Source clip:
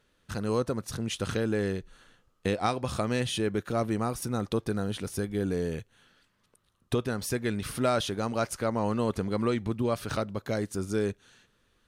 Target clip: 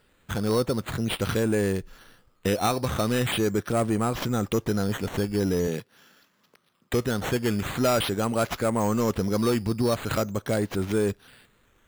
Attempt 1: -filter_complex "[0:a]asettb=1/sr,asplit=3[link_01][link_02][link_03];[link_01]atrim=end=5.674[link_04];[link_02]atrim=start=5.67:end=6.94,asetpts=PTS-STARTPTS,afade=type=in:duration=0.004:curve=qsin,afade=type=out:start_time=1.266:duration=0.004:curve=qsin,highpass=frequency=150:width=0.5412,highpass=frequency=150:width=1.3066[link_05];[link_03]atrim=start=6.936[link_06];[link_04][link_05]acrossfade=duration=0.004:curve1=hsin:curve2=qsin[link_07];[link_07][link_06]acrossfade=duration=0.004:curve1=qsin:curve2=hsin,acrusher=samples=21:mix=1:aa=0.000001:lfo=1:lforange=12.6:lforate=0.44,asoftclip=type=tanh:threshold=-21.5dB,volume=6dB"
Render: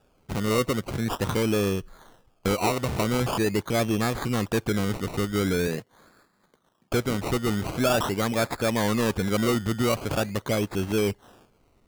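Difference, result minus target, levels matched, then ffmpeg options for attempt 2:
sample-and-hold swept by an LFO: distortion +8 dB
-filter_complex "[0:a]asettb=1/sr,asplit=3[link_01][link_02][link_03];[link_01]atrim=end=5.674[link_04];[link_02]atrim=start=5.67:end=6.94,asetpts=PTS-STARTPTS,afade=type=in:duration=0.004:curve=qsin,afade=type=out:start_time=1.266:duration=0.004:curve=qsin,highpass=frequency=150:width=0.5412,highpass=frequency=150:width=1.3066[link_05];[link_03]atrim=start=6.936[link_06];[link_04][link_05]acrossfade=duration=0.004:curve1=hsin:curve2=qsin[link_07];[link_07][link_06]acrossfade=duration=0.004:curve1=qsin:curve2=hsin,acrusher=samples=7:mix=1:aa=0.000001:lfo=1:lforange=4.2:lforate=0.44,asoftclip=type=tanh:threshold=-21.5dB,volume=6dB"

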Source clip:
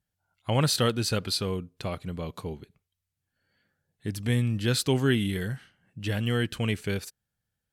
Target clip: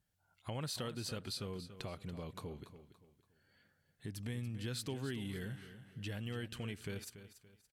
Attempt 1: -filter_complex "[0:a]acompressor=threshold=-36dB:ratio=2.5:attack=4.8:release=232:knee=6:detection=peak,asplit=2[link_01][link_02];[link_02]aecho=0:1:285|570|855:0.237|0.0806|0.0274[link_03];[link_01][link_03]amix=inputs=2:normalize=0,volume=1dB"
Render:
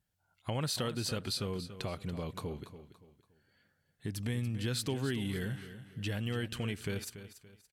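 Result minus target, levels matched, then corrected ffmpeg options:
downward compressor: peak gain reduction −6.5 dB
-filter_complex "[0:a]acompressor=threshold=-47dB:ratio=2.5:attack=4.8:release=232:knee=6:detection=peak,asplit=2[link_01][link_02];[link_02]aecho=0:1:285|570|855:0.237|0.0806|0.0274[link_03];[link_01][link_03]amix=inputs=2:normalize=0,volume=1dB"

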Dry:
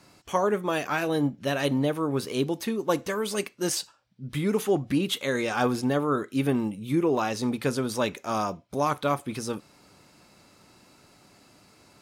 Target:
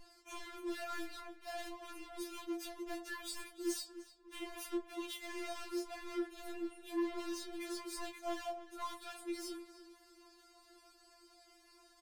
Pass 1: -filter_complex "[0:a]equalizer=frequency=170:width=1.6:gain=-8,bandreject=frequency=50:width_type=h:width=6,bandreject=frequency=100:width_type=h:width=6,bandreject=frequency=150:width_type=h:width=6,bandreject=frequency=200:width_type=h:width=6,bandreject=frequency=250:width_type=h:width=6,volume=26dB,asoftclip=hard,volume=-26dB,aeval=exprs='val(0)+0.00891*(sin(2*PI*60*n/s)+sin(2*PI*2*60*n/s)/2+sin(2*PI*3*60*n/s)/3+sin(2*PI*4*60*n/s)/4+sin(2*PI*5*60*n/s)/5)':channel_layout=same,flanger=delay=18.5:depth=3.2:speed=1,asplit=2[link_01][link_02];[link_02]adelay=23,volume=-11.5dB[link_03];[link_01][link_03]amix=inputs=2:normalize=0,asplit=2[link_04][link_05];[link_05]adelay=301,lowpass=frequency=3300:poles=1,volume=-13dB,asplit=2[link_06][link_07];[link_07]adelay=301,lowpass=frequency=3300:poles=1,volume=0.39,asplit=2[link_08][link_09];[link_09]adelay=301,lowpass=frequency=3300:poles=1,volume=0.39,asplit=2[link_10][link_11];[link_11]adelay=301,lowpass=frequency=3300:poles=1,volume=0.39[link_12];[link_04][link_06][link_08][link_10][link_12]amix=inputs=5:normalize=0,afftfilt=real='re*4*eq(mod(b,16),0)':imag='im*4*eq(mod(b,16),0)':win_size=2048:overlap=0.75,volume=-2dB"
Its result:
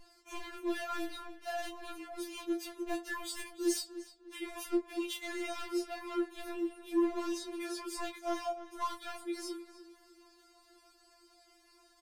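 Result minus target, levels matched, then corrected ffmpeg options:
gain into a clipping stage and back: distortion −5 dB
-filter_complex "[0:a]equalizer=frequency=170:width=1.6:gain=-8,bandreject=frequency=50:width_type=h:width=6,bandreject=frequency=100:width_type=h:width=6,bandreject=frequency=150:width_type=h:width=6,bandreject=frequency=200:width_type=h:width=6,bandreject=frequency=250:width_type=h:width=6,volume=34.5dB,asoftclip=hard,volume=-34.5dB,aeval=exprs='val(0)+0.00891*(sin(2*PI*60*n/s)+sin(2*PI*2*60*n/s)/2+sin(2*PI*3*60*n/s)/3+sin(2*PI*4*60*n/s)/4+sin(2*PI*5*60*n/s)/5)':channel_layout=same,flanger=delay=18.5:depth=3.2:speed=1,asplit=2[link_01][link_02];[link_02]adelay=23,volume=-11.5dB[link_03];[link_01][link_03]amix=inputs=2:normalize=0,asplit=2[link_04][link_05];[link_05]adelay=301,lowpass=frequency=3300:poles=1,volume=-13dB,asplit=2[link_06][link_07];[link_07]adelay=301,lowpass=frequency=3300:poles=1,volume=0.39,asplit=2[link_08][link_09];[link_09]adelay=301,lowpass=frequency=3300:poles=1,volume=0.39,asplit=2[link_10][link_11];[link_11]adelay=301,lowpass=frequency=3300:poles=1,volume=0.39[link_12];[link_04][link_06][link_08][link_10][link_12]amix=inputs=5:normalize=0,afftfilt=real='re*4*eq(mod(b,16),0)':imag='im*4*eq(mod(b,16),0)':win_size=2048:overlap=0.75,volume=-2dB"

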